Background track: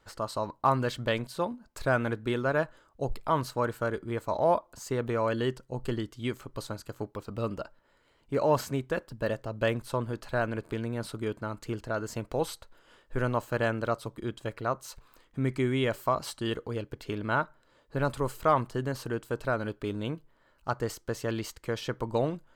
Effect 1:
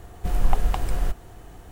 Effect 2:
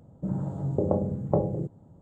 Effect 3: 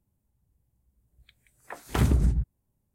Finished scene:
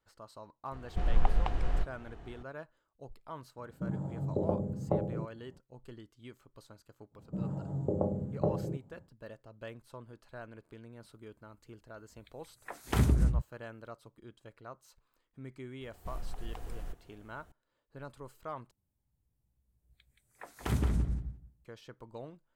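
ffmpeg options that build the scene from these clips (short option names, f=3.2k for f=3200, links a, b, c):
-filter_complex "[1:a]asplit=2[a][b];[2:a]asplit=2[c][d];[3:a]asplit=2[e][f];[0:a]volume=-17.5dB[g];[a]lowpass=3.7k[h];[b]alimiter=limit=-14dB:level=0:latency=1:release=61[i];[f]asplit=2[j][k];[k]adelay=174,lowpass=f=4.4k:p=1,volume=-5.5dB,asplit=2[l][m];[m]adelay=174,lowpass=f=4.4k:p=1,volume=0.18,asplit=2[n][o];[o]adelay=174,lowpass=f=4.4k:p=1,volume=0.18[p];[j][l][n][p]amix=inputs=4:normalize=0[q];[g]asplit=2[r][s];[r]atrim=end=18.714[t];[q]atrim=end=2.94,asetpts=PTS-STARTPTS,volume=-8dB[u];[s]atrim=start=21.646[v];[h]atrim=end=1.71,asetpts=PTS-STARTPTS,volume=-6dB,afade=t=in:d=0.004:c=hsin,afade=t=out:st=1.706:d=0.004:c=hsin,adelay=720[w];[c]atrim=end=2.01,asetpts=PTS-STARTPTS,volume=-6dB,afade=t=in:d=0.004:c=hsin,afade=t=out:st=2.006:d=0.004:c=hsin,adelay=3580[x];[d]atrim=end=2.01,asetpts=PTS-STARTPTS,volume=-6dB,afade=t=in:d=0.1,afade=t=out:st=1.91:d=0.1,adelay=7100[y];[e]atrim=end=2.94,asetpts=PTS-STARTPTS,volume=-3.5dB,afade=t=in:d=0.004:c=hsin,afade=t=out:st=2.936:d=0.004:c=hsin,adelay=484218S[z];[i]atrim=end=1.71,asetpts=PTS-STARTPTS,volume=-16.5dB,afade=t=in:d=0.004:c=hsin,afade=t=out:st=1.706:d=0.004:c=hsin,adelay=15810[aa];[t][u]acrossfade=d=0.004:c1=hsin:c2=hsin[ab];[ab][v]acrossfade=d=0.004:c1=hsin:c2=hsin[ac];[ac][w][x][y][z][aa]amix=inputs=6:normalize=0"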